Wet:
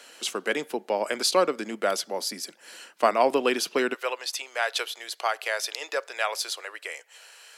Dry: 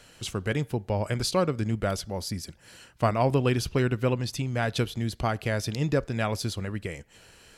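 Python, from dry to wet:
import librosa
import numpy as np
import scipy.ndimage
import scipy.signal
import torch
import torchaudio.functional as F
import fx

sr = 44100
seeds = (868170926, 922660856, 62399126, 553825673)

y = fx.bessel_highpass(x, sr, hz=fx.steps((0.0, 420.0), (3.93, 830.0)), order=8)
y = y * librosa.db_to_amplitude(5.5)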